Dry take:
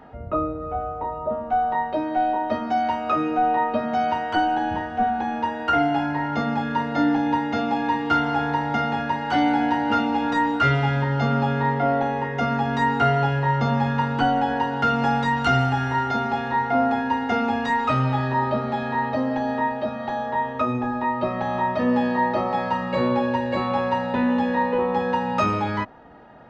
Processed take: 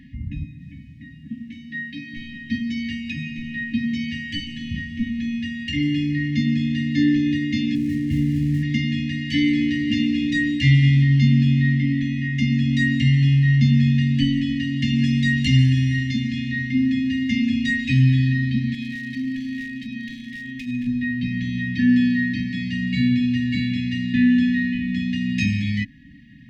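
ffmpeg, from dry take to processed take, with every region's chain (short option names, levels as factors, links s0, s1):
-filter_complex "[0:a]asettb=1/sr,asplit=3[s0][s1][s2];[s0]atrim=end=0.444[s3];[s1]atrim=start=0.44:end=2.14,asetpts=PTS-STARTPTS,afade=t=in:d=0.004:c=qsin,afade=t=out:st=1.696:d=0.004:c=qsin,highpass=160,asplit=2[s4][s5];[s5]adelay=49,volume=0.266[s6];[s4][s6]amix=inputs=2:normalize=0,atrim=end_sample=74970[s7];[s2]atrim=start=2.136[s8];[s3][s7]acrossfade=d=0.004:c1=hsin:c2=qsin[s9];[s9][s8]acrossfade=d=0.004:c1=qsin:c2=hsin,asettb=1/sr,asplit=3[s10][s11][s12];[s10]atrim=end=7.754[s13];[s11]atrim=start=7.75:end=8.63,asetpts=PTS-STARTPTS,afade=t=in:d=0.004:c=qsin,afade=t=out:st=0.876:d=0.004:c=qsin,lowpass=1200,lowshelf=f=150:g=7.5,aeval=exprs='sgn(val(0))*max(abs(val(0))-0.00447,0)':c=same[s14];[s12]atrim=start=8.626[s15];[s13][s14]acrossfade=d=0.004:c1=hsin:c2=qsin[s16];[s16][s15]acrossfade=d=0.004:c1=qsin:c2=hsin,asettb=1/sr,asplit=3[s17][s18][s19];[s17]atrim=end=18.744[s20];[s18]atrim=start=18.74:end=20.87,asetpts=PTS-STARTPTS,afade=t=in:d=0.004:c=qsin,afade=t=out:st=2.126:d=0.004:c=qsin,equalizer=f=96:t=o:w=1.3:g=-12,acompressor=threshold=0.0562:ratio=5:attack=3.2:release=140:knee=1:detection=peak,asoftclip=type=hard:threshold=0.0668[s21];[s19]atrim=start=20.866[s22];[s20][s21]acrossfade=d=0.004:c1=hsin:c2=qsin[s23];[s23][s22]acrossfade=d=0.004:c1=qsin:c2=hsin,afftfilt=real='re*(1-between(b*sr/4096,300,1700))':imag='im*(1-between(b*sr/4096,300,1700))':win_size=4096:overlap=0.75,equalizer=f=140:t=o:w=0.77:g=3,volume=1.88"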